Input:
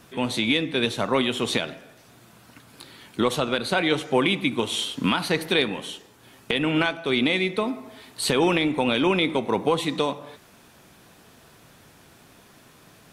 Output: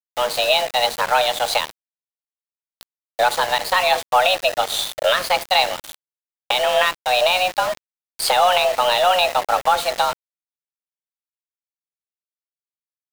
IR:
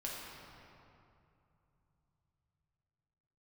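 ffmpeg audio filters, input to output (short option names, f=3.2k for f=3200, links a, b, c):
-af "afreqshift=360,aeval=exprs='0.473*(cos(1*acos(clip(val(0)/0.473,-1,1)))-cos(1*PI/2))+0.00422*(cos(8*acos(clip(val(0)/0.473,-1,1)))-cos(8*PI/2))':c=same,aeval=exprs='val(0)*gte(abs(val(0)),0.0376)':c=same,volume=5dB"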